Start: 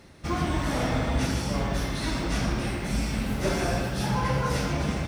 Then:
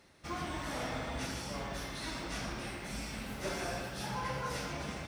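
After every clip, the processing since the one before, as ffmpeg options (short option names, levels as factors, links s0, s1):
-af "lowshelf=f=360:g=-9,volume=0.422"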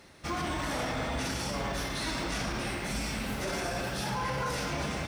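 -af "alimiter=level_in=2.51:limit=0.0631:level=0:latency=1:release=21,volume=0.398,volume=2.51"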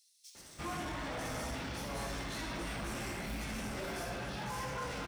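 -filter_complex "[0:a]asoftclip=type=tanh:threshold=0.0211,asplit=2[s0][s1];[s1]adelay=18,volume=0.282[s2];[s0][s2]amix=inputs=2:normalize=0,acrossover=split=4600[s3][s4];[s3]adelay=350[s5];[s5][s4]amix=inputs=2:normalize=0,volume=0.75"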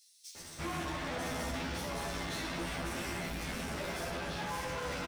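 -filter_complex "[0:a]asoftclip=type=tanh:threshold=0.0106,asplit=2[s0][s1];[s1]adelay=12,volume=0.794[s2];[s0][s2]amix=inputs=2:normalize=0,volume=1.5"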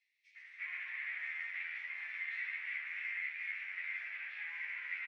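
-af "asuperpass=centerf=2100:order=4:qfactor=3.9,volume=2.37"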